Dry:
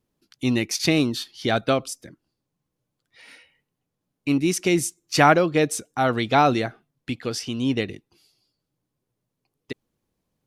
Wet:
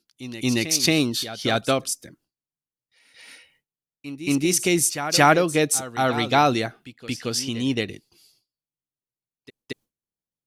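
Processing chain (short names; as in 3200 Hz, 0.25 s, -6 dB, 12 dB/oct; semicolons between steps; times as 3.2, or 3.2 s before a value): gate with hold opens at -55 dBFS; high shelf 4200 Hz +10 dB; pre-echo 0.226 s -13 dB; gain -1 dB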